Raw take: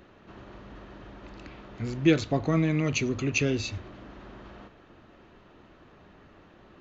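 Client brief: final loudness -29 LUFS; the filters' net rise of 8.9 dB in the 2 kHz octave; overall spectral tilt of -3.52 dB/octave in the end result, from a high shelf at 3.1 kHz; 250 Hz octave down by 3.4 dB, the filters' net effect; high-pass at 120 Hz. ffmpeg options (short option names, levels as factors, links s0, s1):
-af "highpass=120,equalizer=f=250:t=o:g=-5,equalizer=f=2000:t=o:g=8.5,highshelf=f=3100:g=7.5,volume=0.596"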